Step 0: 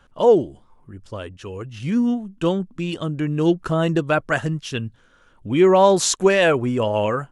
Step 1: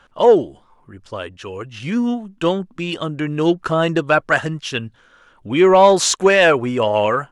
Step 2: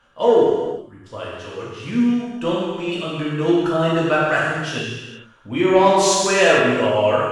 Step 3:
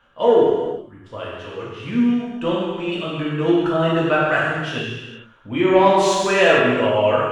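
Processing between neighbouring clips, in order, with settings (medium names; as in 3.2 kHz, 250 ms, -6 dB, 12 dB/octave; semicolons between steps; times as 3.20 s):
overdrive pedal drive 9 dB, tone 4.4 kHz, clips at -2 dBFS; trim +2.5 dB
gated-style reverb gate 490 ms falling, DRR -6.5 dB; trim -8.5 dB
high-order bell 7.3 kHz -8.5 dB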